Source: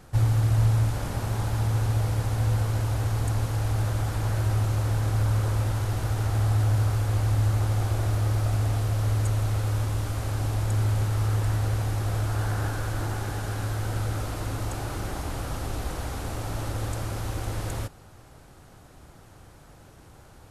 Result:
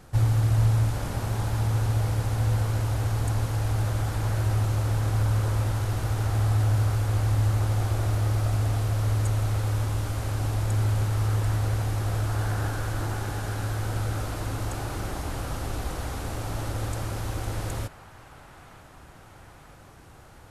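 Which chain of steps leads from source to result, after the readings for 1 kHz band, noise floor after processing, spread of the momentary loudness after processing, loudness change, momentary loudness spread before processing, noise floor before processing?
+0.5 dB, −49 dBFS, 9 LU, 0.0 dB, 9 LU, −51 dBFS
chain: delay with a band-pass on its return 941 ms, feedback 68%, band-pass 1,500 Hz, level −13 dB

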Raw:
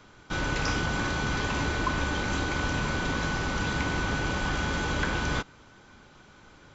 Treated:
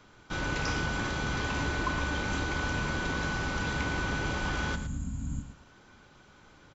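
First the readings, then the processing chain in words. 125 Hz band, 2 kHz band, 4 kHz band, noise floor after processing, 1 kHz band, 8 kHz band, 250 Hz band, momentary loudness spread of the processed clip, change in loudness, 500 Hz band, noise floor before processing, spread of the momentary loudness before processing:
−2.5 dB, −2.5 dB, −4.0 dB, −58 dBFS, −3.5 dB, can't be measured, −3.5 dB, 6 LU, −3.0 dB, −3.5 dB, −54 dBFS, 2 LU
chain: healed spectral selection 0:04.78–0:05.62, 290–6,500 Hz after
on a send: repeating echo 112 ms, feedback 22%, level −11 dB
on the sum: level −3.5 dB

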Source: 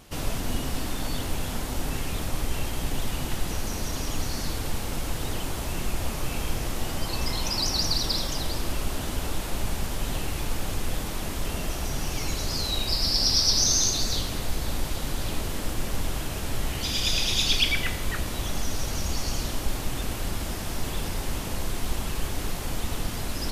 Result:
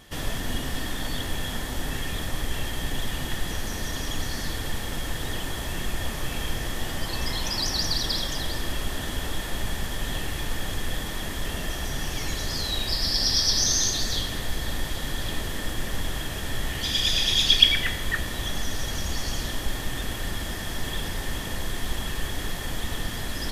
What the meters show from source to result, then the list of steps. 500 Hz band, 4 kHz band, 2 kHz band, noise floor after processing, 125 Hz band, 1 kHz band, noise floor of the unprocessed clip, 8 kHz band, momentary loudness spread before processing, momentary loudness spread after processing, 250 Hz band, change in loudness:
−1.0 dB, +3.0 dB, +3.5 dB, −32 dBFS, −1.0 dB, −0.5 dB, −32 dBFS, −1.0 dB, 10 LU, 11 LU, −1.0 dB, +1.0 dB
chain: hollow resonant body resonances 1,800/3,300 Hz, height 14 dB, ringing for 25 ms
level −1 dB

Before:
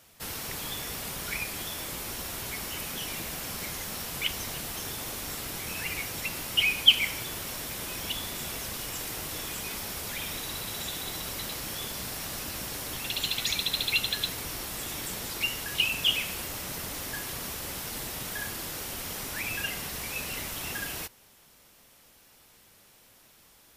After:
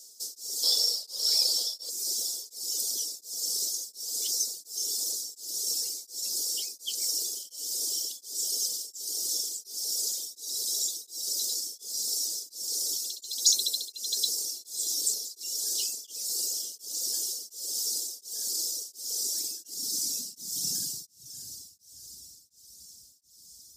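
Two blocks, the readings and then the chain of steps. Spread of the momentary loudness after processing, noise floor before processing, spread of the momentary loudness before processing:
9 LU, −58 dBFS, 9 LU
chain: gain on a spectral selection 0:00.63–0:01.90, 440–5,600 Hz +10 dB
drawn EQ curve 300 Hz 0 dB, 2,500 Hz −27 dB, 5,000 Hz +11 dB
feedback delay with all-pass diffusion 631 ms, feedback 54%, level −12 dB
reverb reduction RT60 1.1 s
flat-topped bell 5,000 Hz +10 dB
high-pass filter sweep 440 Hz → 60 Hz, 0:19.20–0:22.18
tremolo along a rectified sine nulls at 1.4 Hz
level −5.5 dB

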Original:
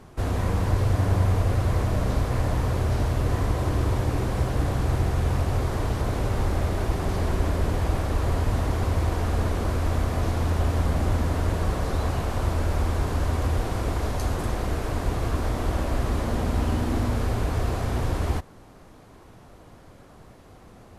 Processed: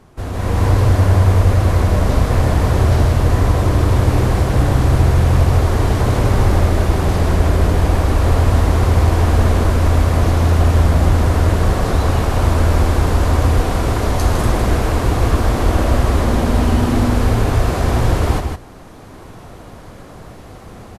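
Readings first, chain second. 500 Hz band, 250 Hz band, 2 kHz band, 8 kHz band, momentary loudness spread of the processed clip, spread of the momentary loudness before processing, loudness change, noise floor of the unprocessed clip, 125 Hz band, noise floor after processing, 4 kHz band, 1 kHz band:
+10.0 dB, +10.0 dB, +10.0 dB, +10.0 dB, 3 LU, 3 LU, +10.5 dB, −49 dBFS, +10.5 dB, −37 dBFS, +10.0 dB, +10.0 dB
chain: on a send: single-tap delay 156 ms −6 dB
on the sum: automatic gain control gain up to 11.5 dB

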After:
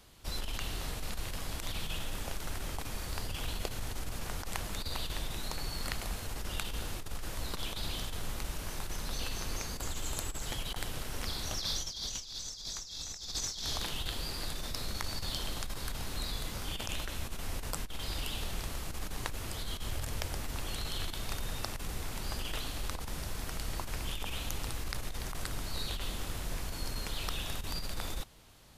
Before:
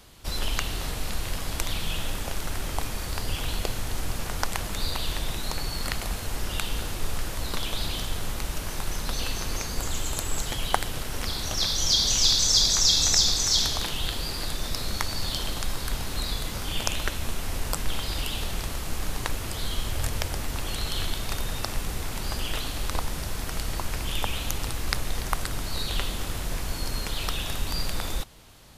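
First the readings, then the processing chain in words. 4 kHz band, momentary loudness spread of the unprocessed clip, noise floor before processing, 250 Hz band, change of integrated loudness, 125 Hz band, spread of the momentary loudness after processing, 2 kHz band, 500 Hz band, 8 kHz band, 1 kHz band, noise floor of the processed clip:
−11.5 dB, 13 LU, −34 dBFS, −7.5 dB, −10.5 dB, −7.5 dB, 4 LU, −8.0 dB, −8.0 dB, −12.0 dB, −9.0 dB, −43 dBFS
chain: compressor whose output falls as the input rises −26 dBFS, ratio −0.5
level −8 dB

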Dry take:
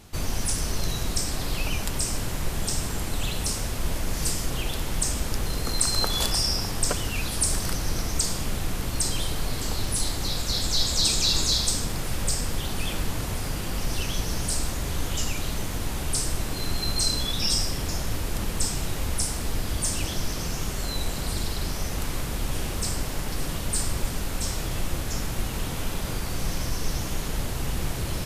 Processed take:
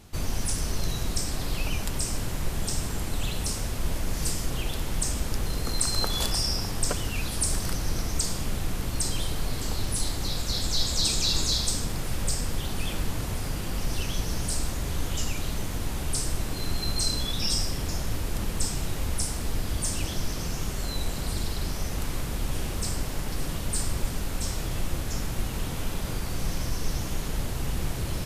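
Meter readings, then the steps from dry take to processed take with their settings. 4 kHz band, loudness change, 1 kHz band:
−3.0 dB, −2.5 dB, −2.5 dB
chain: low-shelf EQ 370 Hz +2.5 dB
level −3 dB

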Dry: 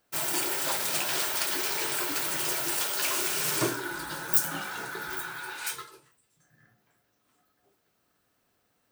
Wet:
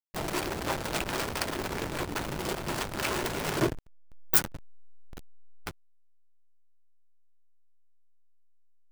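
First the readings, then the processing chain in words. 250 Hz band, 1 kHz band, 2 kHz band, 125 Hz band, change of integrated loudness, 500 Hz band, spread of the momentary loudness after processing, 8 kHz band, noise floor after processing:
+3.5 dB, −0.5 dB, −3.5 dB, +7.0 dB, −2.5 dB, +2.5 dB, 18 LU, −8.0 dB, −57 dBFS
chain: slack as between gear wheels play −18 dBFS
level +4 dB

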